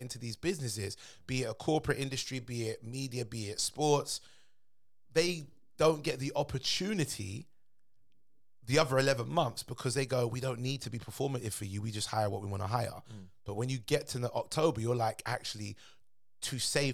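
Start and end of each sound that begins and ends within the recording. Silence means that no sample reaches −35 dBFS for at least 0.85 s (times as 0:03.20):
0:05.16–0:07.39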